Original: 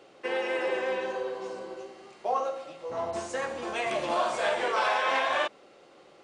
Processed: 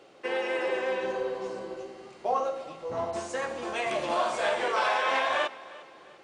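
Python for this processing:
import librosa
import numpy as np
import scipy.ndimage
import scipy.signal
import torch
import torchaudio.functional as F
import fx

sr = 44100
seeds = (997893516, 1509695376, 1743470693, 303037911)

y = fx.low_shelf(x, sr, hz=220.0, db=8.5, at=(1.03, 3.05))
y = fx.echo_feedback(y, sr, ms=352, feedback_pct=42, wet_db=-19.5)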